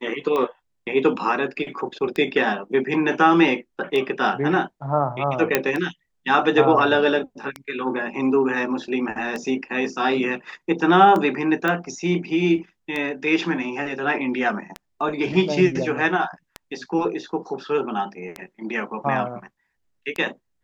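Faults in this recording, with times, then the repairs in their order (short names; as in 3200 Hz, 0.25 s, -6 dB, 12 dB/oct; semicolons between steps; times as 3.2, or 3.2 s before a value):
tick 33 1/3 rpm -14 dBFS
5.55 pop -2 dBFS
11.68 pop -11 dBFS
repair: de-click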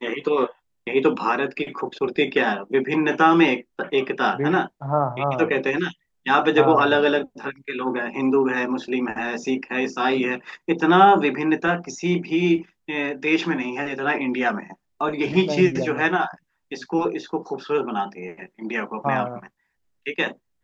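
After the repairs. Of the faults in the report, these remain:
none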